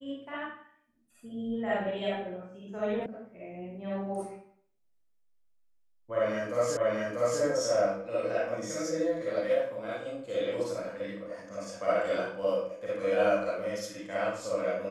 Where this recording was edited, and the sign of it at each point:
0:03.06: cut off before it has died away
0:06.77: the same again, the last 0.64 s

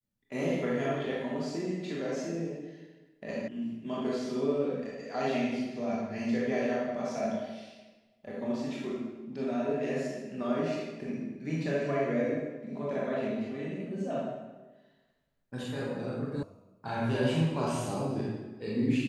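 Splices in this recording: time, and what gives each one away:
0:03.48: cut off before it has died away
0:16.43: cut off before it has died away

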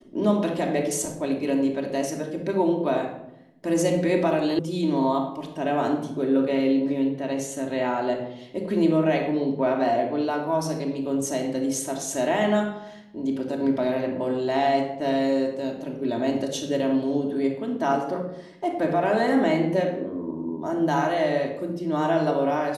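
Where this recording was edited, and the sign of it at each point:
0:04.59: cut off before it has died away

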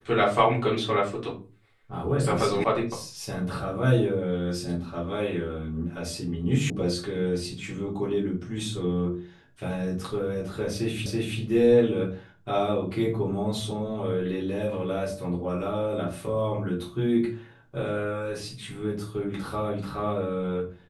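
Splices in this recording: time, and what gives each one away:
0:02.64: cut off before it has died away
0:06.70: cut off before it has died away
0:11.06: the same again, the last 0.33 s

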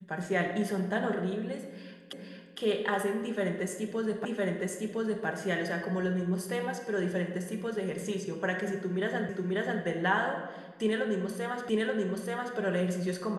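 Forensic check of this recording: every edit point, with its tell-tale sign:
0:02.13: the same again, the last 0.46 s
0:04.25: the same again, the last 1.01 s
0:09.29: the same again, the last 0.54 s
0:11.69: the same again, the last 0.88 s

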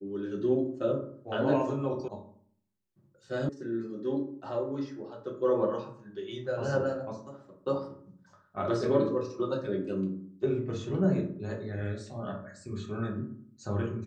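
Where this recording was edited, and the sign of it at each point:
0:02.08: cut off before it has died away
0:03.49: cut off before it has died away

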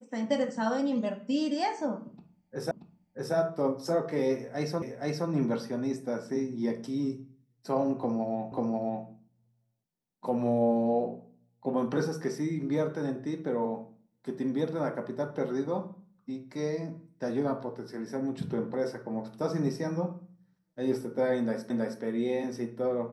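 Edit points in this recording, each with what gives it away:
0:02.71: the same again, the last 0.63 s
0:04.82: the same again, the last 0.47 s
0:08.52: the same again, the last 0.54 s
0:21.70: the same again, the last 0.32 s

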